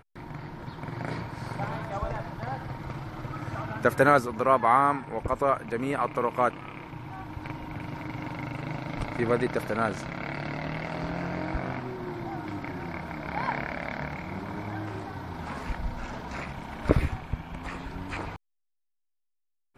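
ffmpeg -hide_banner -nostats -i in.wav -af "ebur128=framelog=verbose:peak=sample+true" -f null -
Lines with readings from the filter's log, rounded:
Integrated loudness:
  I:         -30.4 LUFS
  Threshold: -40.6 LUFS
Loudness range:
  LRA:         9.5 LU
  Threshold: -50.3 LUFS
  LRA low:   -34.7 LUFS
  LRA high:  -25.2 LUFS
Sample peak:
  Peak:       -5.2 dBFS
True peak:
  Peak:       -5.2 dBFS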